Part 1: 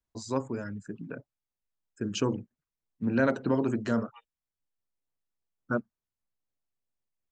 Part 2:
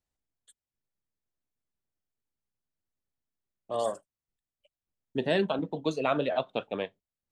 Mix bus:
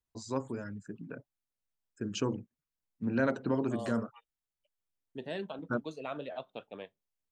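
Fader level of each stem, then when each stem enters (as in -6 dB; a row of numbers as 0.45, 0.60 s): -4.0, -12.0 dB; 0.00, 0.00 s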